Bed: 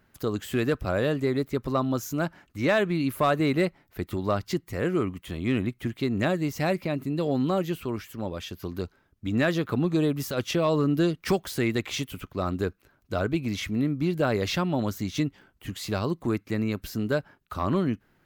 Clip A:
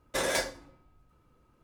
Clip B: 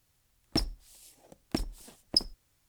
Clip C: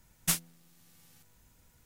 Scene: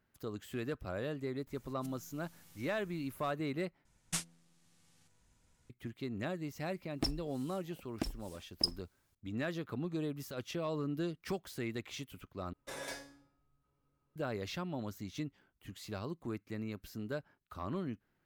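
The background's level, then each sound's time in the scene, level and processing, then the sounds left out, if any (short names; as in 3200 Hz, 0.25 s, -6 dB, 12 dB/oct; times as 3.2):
bed -13.5 dB
1.47 add C -10.5 dB + negative-ratio compressor -45 dBFS, ratio -0.5
3.85 replace with C -6.5 dB + LPF 9900 Hz 24 dB/oct
6.47 add B -6 dB
12.53 replace with A -4.5 dB + resonator 140 Hz, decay 0.46 s, mix 80%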